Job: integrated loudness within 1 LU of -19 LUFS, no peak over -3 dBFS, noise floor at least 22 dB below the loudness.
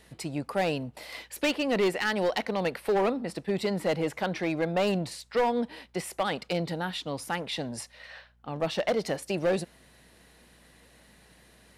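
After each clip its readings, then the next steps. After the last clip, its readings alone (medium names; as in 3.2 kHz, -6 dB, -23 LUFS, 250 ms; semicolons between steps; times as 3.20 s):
clipped samples 1.3%; clipping level -20.5 dBFS; hum 60 Hz; highest harmonic 240 Hz; hum level -53 dBFS; loudness -30.0 LUFS; peak level -20.5 dBFS; loudness target -19.0 LUFS
-> clip repair -20.5 dBFS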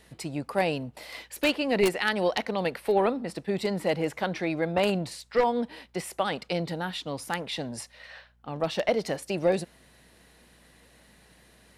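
clipped samples 0.0%; hum 60 Hz; highest harmonic 240 Hz; hum level -53 dBFS
-> de-hum 60 Hz, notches 4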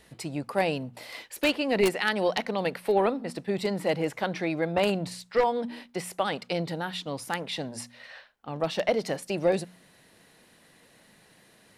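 hum not found; loudness -28.5 LUFS; peak level -11.5 dBFS; loudness target -19.0 LUFS
-> trim +9.5 dB; peak limiter -3 dBFS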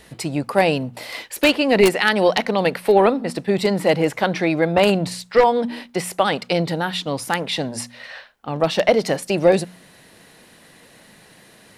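loudness -19.5 LUFS; peak level -3.0 dBFS; noise floor -50 dBFS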